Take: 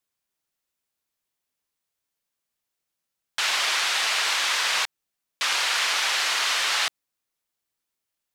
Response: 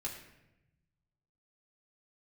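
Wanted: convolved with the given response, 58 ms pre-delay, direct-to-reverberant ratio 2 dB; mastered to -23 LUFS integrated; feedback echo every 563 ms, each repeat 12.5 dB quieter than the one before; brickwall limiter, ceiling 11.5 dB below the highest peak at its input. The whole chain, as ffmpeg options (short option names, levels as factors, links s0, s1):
-filter_complex "[0:a]alimiter=limit=0.0891:level=0:latency=1,aecho=1:1:563|1126|1689:0.237|0.0569|0.0137,asplit=2[s0][s1];[1:a]atrim=start_sample=2205,adelay=58[s2];[s1][s2]afir=irnorm=-1:irlink=0,volume=0.794[s3];[s0][s3]amix=inputs=2:normalize=0,volume=1.58"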